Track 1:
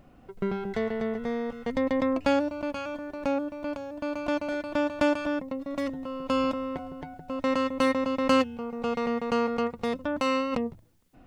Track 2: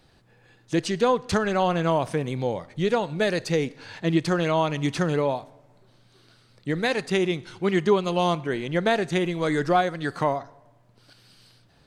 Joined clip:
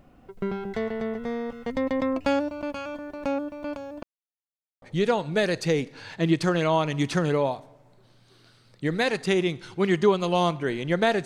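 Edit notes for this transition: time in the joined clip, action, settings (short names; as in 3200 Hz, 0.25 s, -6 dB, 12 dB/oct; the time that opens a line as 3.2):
track 1
4.03–4.82 mute
4.82 switch to track 2 from 2.66 s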